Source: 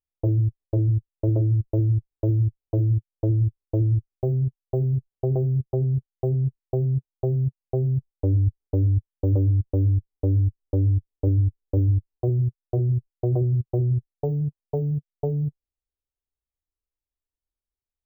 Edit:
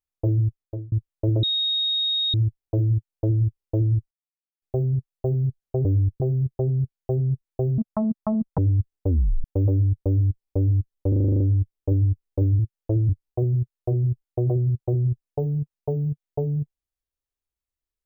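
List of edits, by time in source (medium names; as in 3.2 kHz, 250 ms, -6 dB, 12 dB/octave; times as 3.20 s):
0.47–0.92 s: fade out
1.43–2.34 s: bleep 3.74 kHz -20.5 dBFS
2.93–3.43 s: copy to 11.95 s
4.11 s: insert silence 0.51 s
6.92–8.26 s: speed 167%
8.76 s: tape stop 0.36 s
9.75–10.10 s: copy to 5.34 s
10.76 s: stutter 0.04 s, 9 plays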